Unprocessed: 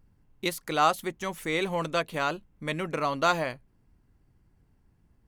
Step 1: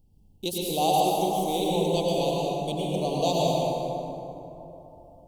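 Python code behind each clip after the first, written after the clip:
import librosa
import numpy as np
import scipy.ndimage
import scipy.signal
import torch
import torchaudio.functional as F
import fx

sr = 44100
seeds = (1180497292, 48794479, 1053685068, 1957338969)

y = scipy.signal.sosfilt(scipy.signal.ellip(3, 1.0, 80, [820.0, 3000.0], 'bandstop', fs=sr, output='sos'), x)
y = fx.high_shelf(y, sr, hz=7000.0, db=4.5)
y = fx.rev_plate(y, sr, seeds[0], rt60_s=3.4, hf_ratio=0.45, predelay_ms=85, drr_db=-4.5)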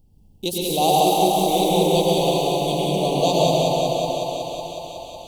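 y = fx.echo_thinned(x, sr, ms=184, feedback_pct=82, hz=300.0, wet_db=-5)
y = y * 10.0 ** (5.0 / 20.0)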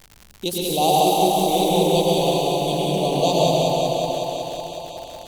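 y = fx.dmg_crackle(x, sr, seeds[1], per_s=100.0, level_db=-29.0)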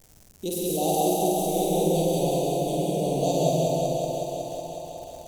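y = fx.band_shelf(x, sr, hz=2000.0, db=-10.0, octaves=2.6)
y = fx.doubler(y, sr, ms=50.0, db=-2.5)
y = fx.dynamic_eq(y, sr, hz=1100.0, q=1.3, threshold_db=-32.0, ratio=4.0, max_db=-5)
y = y * 10.0 ** (-4.5 / 20.0)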